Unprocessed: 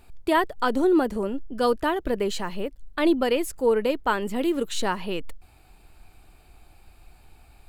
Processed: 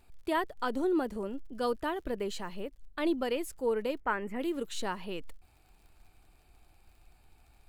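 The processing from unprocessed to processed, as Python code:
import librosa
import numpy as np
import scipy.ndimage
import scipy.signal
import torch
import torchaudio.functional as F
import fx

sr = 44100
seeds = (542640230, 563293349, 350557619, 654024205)

y = fx.dmg_crackle(x, sr, seeds[0], per_s=61.0, level_db=-45.0)
y = fx.high_shelf_res(y, sr, hz=2800.0, db=-9.0, q=3.0, at=(4.0, 4.4))
y = F.gain(torch.from_numpy(y), -9.0).numpy()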